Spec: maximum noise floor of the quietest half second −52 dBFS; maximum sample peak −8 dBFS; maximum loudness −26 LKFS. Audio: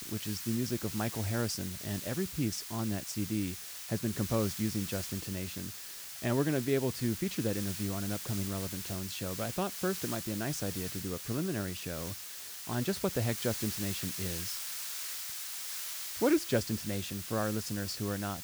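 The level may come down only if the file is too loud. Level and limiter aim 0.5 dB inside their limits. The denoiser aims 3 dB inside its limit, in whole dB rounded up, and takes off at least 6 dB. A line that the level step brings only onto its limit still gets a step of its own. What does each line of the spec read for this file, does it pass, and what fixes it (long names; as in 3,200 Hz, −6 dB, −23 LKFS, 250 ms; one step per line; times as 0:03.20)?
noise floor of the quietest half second −45 dBFS: out of spec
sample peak −16.0 dBFS: in spec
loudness −34.0 LKFS: in spec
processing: broadband denoise 10 dB, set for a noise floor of −45 dBFS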